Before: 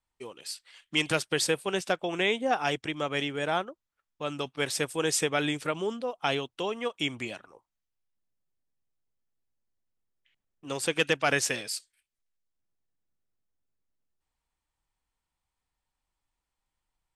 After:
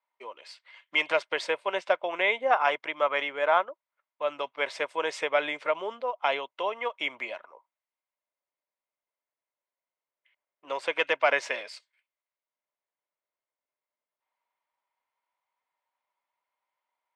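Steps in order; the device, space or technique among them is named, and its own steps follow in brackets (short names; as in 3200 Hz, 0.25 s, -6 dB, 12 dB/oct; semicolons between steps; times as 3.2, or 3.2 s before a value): tin-can telephone (BPF 620–2800 Hz; small resonant body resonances 600/970/2100 Hz, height 10 dB, ringing for 25 ms); 2.49–3.61 dynamic EQ 1200 Hz, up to +6 dB, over -40 dBFS, Q 1.6; gain +1 dB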